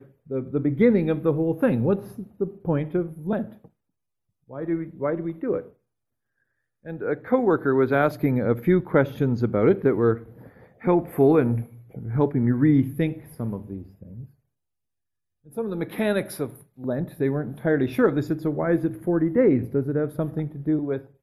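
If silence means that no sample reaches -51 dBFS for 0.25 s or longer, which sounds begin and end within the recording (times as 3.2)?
4.49–5.73
6.85–14.31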